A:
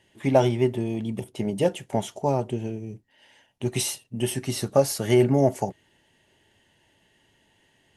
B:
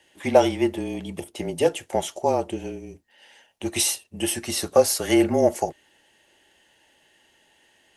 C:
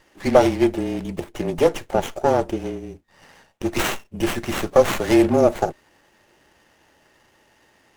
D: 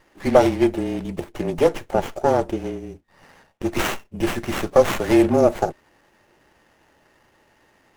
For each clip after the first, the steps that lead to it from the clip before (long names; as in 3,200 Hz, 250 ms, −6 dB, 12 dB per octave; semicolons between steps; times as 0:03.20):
frequency shifter −30 Hz; bass and treble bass −13 dB, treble +2 dB; level +4 dB
in parallel at −3 dB: brickwall limiter −12.5 dBFS, peak gain reduction 9 dB; on the sum: windowed peak hold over 9 samples
running median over 9 samples